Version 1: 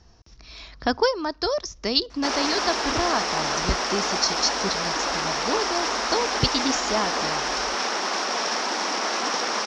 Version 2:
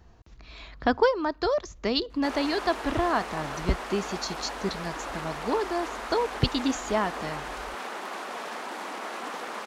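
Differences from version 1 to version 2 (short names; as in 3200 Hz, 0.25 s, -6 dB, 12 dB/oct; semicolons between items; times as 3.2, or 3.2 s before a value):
background -8.5 dB; master: remove synth low-pass 5500 Hz, resonance Q 7.9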